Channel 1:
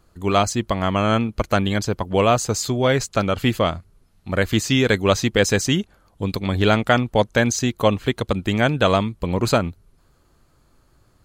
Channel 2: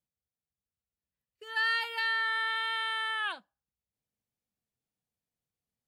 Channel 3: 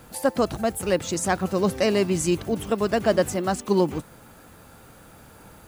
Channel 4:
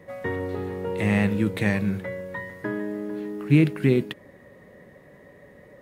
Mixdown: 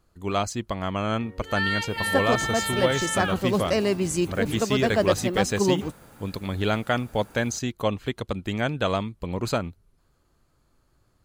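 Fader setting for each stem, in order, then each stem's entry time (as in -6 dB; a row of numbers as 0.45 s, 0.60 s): -7.5 dB, +2.0 dB, -2.0 dB, -18.5 dB; 0.00 s, 0.00 s, 1.90 s, 0.95 s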